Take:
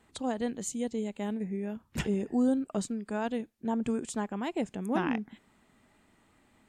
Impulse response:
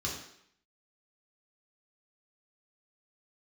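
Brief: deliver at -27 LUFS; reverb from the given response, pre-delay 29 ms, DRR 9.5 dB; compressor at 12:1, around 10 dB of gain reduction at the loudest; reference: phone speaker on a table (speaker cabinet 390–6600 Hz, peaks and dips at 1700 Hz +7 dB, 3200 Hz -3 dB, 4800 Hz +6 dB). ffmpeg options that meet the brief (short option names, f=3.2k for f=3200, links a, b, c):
-filter_complex "[0:a]acompressor=threshold=-32dB:ratio=12,asplit=2[a][b];[1:a]atrim=start_sample=2205,adelay=29[c];[b][c]afir=irnorm=-1:irlink=0,volume=-14dB[d];[a][d]amix=inputs=2:normalize=0,highpass=f=390:w=0.5412,highpass=f=390:w=1.3066,equalizer=f=1.7k:t=q:w=4:g=7,equalizer=f=3.2k:t=q:w=4:g=-3,equalizer=f=4.8k:t=q:w=4:g=6,lowpass=f=6.6k:w=0.5412,lowpass=f=6.6k:w=1.3066,volume=15.5dB"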